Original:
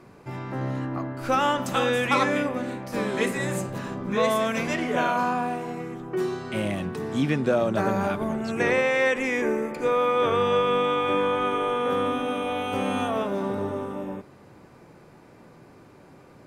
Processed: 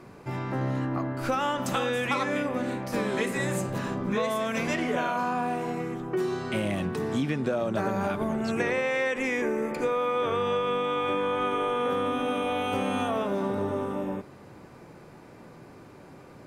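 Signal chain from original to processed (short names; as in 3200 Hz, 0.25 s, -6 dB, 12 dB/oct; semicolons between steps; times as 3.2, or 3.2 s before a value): compressor, threshold -26 dBFS, peak gain reduction 9 dB; gain +2 dB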